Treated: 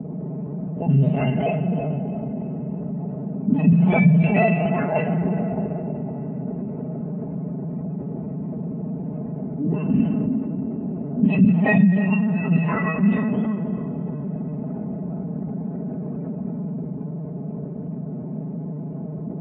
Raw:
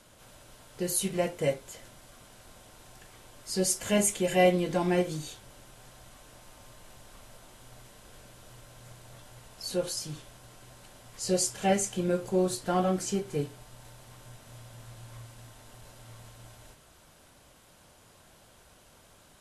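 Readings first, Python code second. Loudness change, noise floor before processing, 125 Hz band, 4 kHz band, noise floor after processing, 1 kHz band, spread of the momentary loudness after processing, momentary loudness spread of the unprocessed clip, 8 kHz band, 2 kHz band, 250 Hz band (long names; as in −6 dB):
+5.5 dB, −58 dBFS, +17.0 dB, can't be measured, −31 dBFS, +5.0 dB, 14 LU, 22 LU, below −40 dB, +10.0 dB, +14.5 dB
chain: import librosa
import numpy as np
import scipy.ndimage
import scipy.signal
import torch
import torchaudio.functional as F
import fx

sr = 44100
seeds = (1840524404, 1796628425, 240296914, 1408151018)

p1 = fx.octave_mirror(x, sr, pivot_hz=1200.0)
p2 = scipy.signal.sosfilt(scipy.signal.cheby1(6, 1.0, 3100.0, 'lowpass', fs=sr, output='sos'), p1)
p3 = fx.rev_plate(p2, sr, seeds[0], rt60_s=4.3, hf_ratio=0.85, predelay_ms=0, drr_db=6.0)
p4 = fx.lpc_vocoder(p3, sr, seeds[1], excitation='pitch_kept', order=16)
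p5 = fx.peak_eq(p4, sr, hz=650.0, db=10.5, octaves=0.89)
p6 = fx.echo_feedback(p5, sr, ms=323, feedback_pct=47, wet_db=-15)
p7 = fx.level_steps(p6, sr, step_db=13)
p8 = p6 + (p7 * 10.0 ** (-0.5 / 20.0))
p9 = p8 + 0.75 * np.pad(p8, (int(4.7 * sr / 1000.0), 0))[:len(p8)]
p10 = fx.env_lowpass(p9, sr, base_hz=470.0, full_db=-10.0)
p11 = scipy.signal.sosfilt(scipy.signal.butter(4, 120.0, 'highpass', fs=sr, output='sos'), p10)
p12 = fx.low_shelf(p11, sr, hz=280.0, db=9.5)
p13 = fx.env_flatten(p12, sr, amount_pct=50)
y = p13 * 10.0 ** (-8.0 / 20.0)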